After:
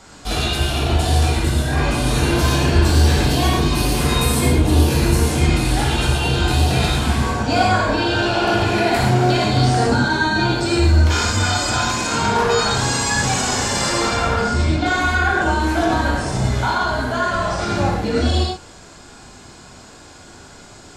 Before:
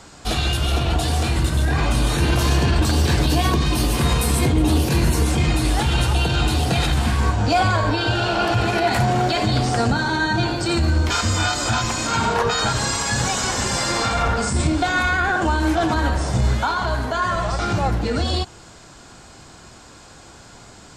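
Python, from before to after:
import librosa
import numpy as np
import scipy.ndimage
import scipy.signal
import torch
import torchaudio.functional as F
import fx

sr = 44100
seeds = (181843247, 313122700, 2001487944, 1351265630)

y = fx.cheby1_lowpass(x, sr, hz=4300.0, order=2, at=(14.41, 14.86))
y = fx.rev_gated(y, sr, seeds[0], gate_ms=150, shape='flat', drr_db=-3.0)
y = y * 10.0 ** (-2.5 / 20.0)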